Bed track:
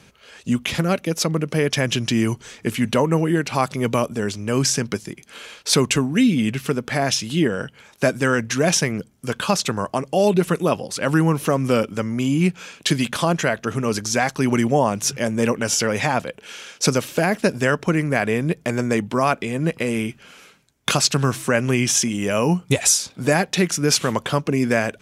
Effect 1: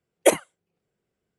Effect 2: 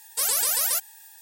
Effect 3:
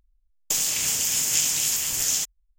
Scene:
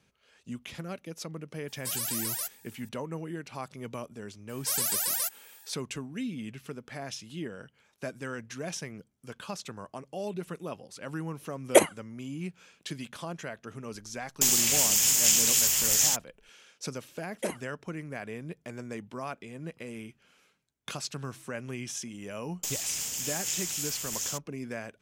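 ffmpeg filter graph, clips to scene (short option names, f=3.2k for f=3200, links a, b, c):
-filter_complex "[2:a]asplit=2[a][b];[1:a]asplit=2[c][d];[3:a]asplit=2[e][f];[0:a]volume=-18.5dB[g];[a]acontrast=58[h];[e]highshelf=f=11k:g=3.5[i];[d]alimiter=limit=-13dB:level=0:latency=1:release=27[j];[h]atrim=end=1.21,asetpts=PTS-STARTPTS,volume=-15.5dB,afade=t=in:d=0.004:c=hsin,afade=t=out:st=1.206:d=0.004:c=hsin,adelay=1680[k];[b]atrim=end=1.21,asetpts=PTS-STARTPTS,volume=-5.5dB,afade=t=in:d=0.004:c=hsin,afade=t=out:st=1.206:d=0.004:c=hsin,adelay=198009S[l];[c]atrim=end=1.38,asetpts=PTS-STARTPTS,volume=-1dB,afade=t=in:d=0.004:c=hsin,afade=t=out:st=1.376:d=0.004:c=hsin,adelay=11490[m];[i]atrim=end=2.58,asetpts=PTS-STARTPTS,volume=-0.5dB,afade=t=in:d=0.004:c=hsin,afade=t=out:st=2.576:d=0.004:c=hsin,adelay=13910[n];[j]atrim=end=1.38,asetpts=PTS-STARTPTS,volume=-10dB,afade=t=in:d=0.004:c=hsin,afade=t=out:st=1.376:d=0.004:c=hsin,adelay=17170[o];[f]atrim=end=2.58,asetpts=PTS-STARTPTS,volume=-10dB,afade=t=in:d=0.004:c=hsin,afade=t=out:st=2.576:d=0.004:c=hsin,adelay=22130[p];[g][k][l][m][n][o][p]amix=inputs=7:normalize=0"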